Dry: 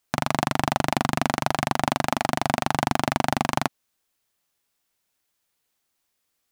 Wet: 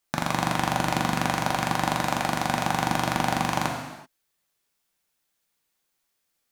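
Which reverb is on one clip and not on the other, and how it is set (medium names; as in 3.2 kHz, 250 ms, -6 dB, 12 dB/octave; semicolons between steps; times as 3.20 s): gated-style reverb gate 410 ms falling, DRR 1 dB; trim -3 dB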